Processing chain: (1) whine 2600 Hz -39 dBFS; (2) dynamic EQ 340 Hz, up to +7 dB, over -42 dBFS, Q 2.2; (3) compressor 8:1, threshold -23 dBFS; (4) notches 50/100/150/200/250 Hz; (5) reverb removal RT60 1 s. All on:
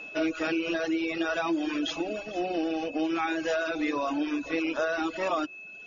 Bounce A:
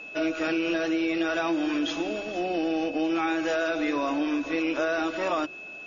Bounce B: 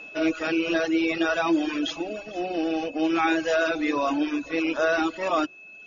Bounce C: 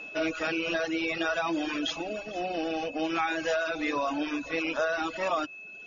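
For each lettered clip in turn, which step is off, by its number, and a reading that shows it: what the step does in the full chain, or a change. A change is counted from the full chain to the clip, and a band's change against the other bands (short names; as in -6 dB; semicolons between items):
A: 5, loudness change +2.0 LU; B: 3, mean gain reduction 3.0 dB; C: 2, 250 Hz band -5.0 dB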